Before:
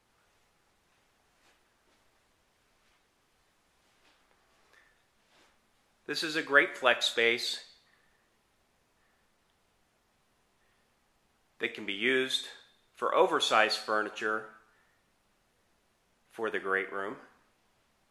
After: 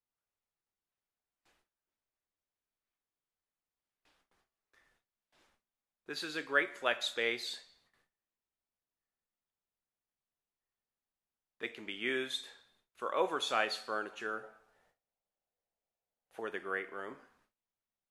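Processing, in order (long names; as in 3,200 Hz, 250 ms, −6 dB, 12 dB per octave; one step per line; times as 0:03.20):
0:14.43–0:16.40: flat-topped bell 610 Hz +9 dB 1.1 octaves
noise gate with hold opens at −55 dBFS
level −7 dB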